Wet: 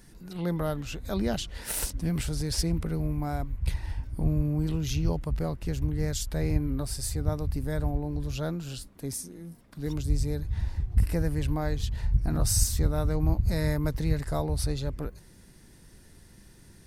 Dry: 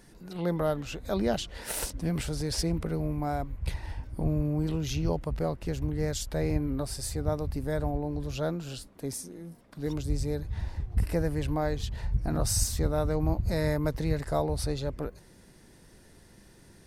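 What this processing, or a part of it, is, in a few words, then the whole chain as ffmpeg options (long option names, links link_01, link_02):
smiley-face EQ: -af "lowshelf=frequency=140:gain=5,equalizer=frequency=580:width_type=o:width=1.5:gain=-4.5,highshelf=frequency=8900:gain=5"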